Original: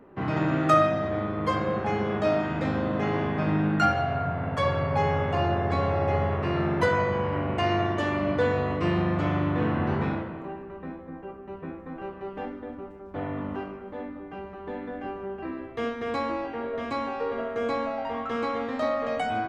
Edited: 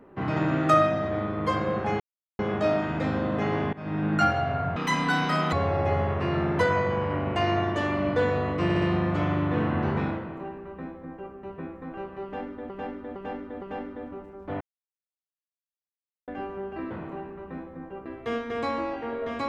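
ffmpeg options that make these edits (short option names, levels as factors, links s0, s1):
-filter_complex "[0:a]asplit=15[s0][s1][s2][s3][s4][s5][s6][s7][s8][s9][s10][s11][s12][s13][s14];[s0]atrim=end=2,asetpts=PTS-STARTPTS,afade=t=out:st=1.996:d=0.004:c=hsin,apad=pad_dur=0.39[s15];[s1]atrim=start=2:end=3.34,asetpts=PTS-STARTPTS,afade=t=in:d=0.004:c=hsin,afade=t=out:st=1.336:d=0.004:c=hsin:silence=0.0944061[s16];[s2]atrim=start=3.34:end=4.374,asetpts=PTS-STARTPTS,afade=t=in:d=0.41:silence=0.0944061[s17];[s3]atrim=start=4.37:end=5.75,asetpts=PTS-STARTPTS,asetrate=79380,aresample=44100[s18];[s4]atrim=start=5.746:end=8.922[s19];[s5]atrim=start=8.858:end=8.922[s20];[s6]atrim=start=8.858:end=8.922[s21];[s7]atrim=start=8.858:end=12.742[s22];[s8]atrim=start=12.278:end=12.742[s23];[s9]atrim=start=12.278:end=12.742[s24];[s10]atrim=start=12.278:end=13.27,asetpts=PTS-STARTPTS,afade=t=out:st=0.988:d=0.004:c=hsin[s25];[s11]atrim=start=13.27:end=14.94,asetpts=PTS-STARTPTS,volume=0[s26];[s12]atrim=start=14.94:end=15.572,asetpts=PTS-STARTPTS,afade=t=in:d=0.004:c=hsin[s27];[s13]atrim=start=10.228:end=11.382[s28];[s14]atrim=start=15.568[s29];[s15][s16][s17]concat=n=3:v=0:a=1[s30];[s30][s18]acrossfade=d=0.004:c1=hsin:c2=hsin[s31];[s31][s19]acrossfade=d=0.004:c1=hsin:c2=hsin[s32];[s32][s20]acrossfade=d=0.004:c1=hsin:c2=hsin[s33];[s33][s21]acrossfade=d=0.004:c1=hsin:c2=hsin[s34];[s34][s22]acrossfade=d=0.004:c1=hsin:c2=hsin[s35];[s35][s23]acrossfade=d=0.004:c1=hsin:c2=hsin[s36];[s36][s24]acrossfade=d=0.004:c1=hsin:c2=hsin[s37];[s25][s26][s27]concat=n=3:v=0:a=1[s38];[s37][s38]acrossfade=d=0.004:c1=hsin:c2=hsin[s39];[s39][s28]acrossfade=d=0.004:c1=hsin:c2=hsin[s40];[s40][s29]acrossfade=d=0.004:c1=hsin:c2=hsin"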